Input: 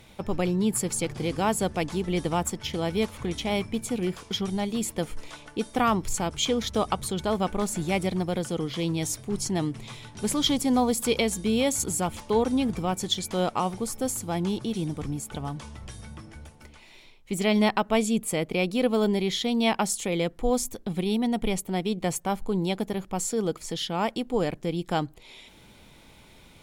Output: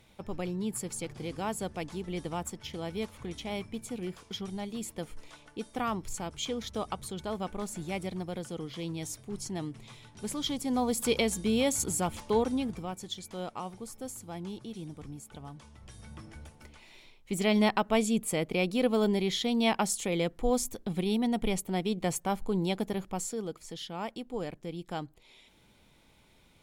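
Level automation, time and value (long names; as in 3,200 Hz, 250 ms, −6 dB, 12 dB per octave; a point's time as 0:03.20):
0:10.58 −9 dB
0:11.05 −3 dB
0:12.34 −3 dB
0:13.01 −12 dB
0:15.73 −12 dB
0:16.22 −3 dB
0:23.04 −3 dB
0:23.47 −10 dB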